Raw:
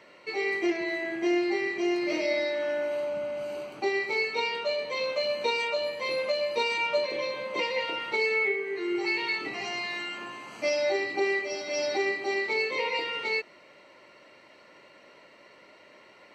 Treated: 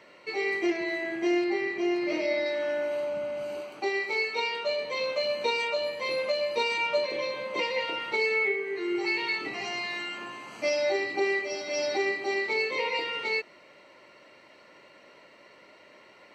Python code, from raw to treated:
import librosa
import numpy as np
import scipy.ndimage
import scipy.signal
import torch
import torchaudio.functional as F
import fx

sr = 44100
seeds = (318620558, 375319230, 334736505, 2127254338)

y = fx.high_shelf(x, sr, hz=5500.0, db=-9.5, at=(1.44, 2.46))
y = fx.highpass(y, sr, hz=300.0, slope=6, at=(3.61, 4.65))